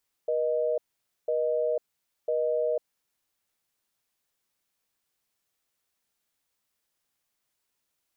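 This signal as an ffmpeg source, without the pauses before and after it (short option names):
-f lavfi -i "aevalsrc='0.0473*(sin(2*PI*480*t)+sin(2*PI*620*t))*clip(min(mod(t,1),0.5-mod(t,1))/0.005,0,1)':d=2.92:s=44100"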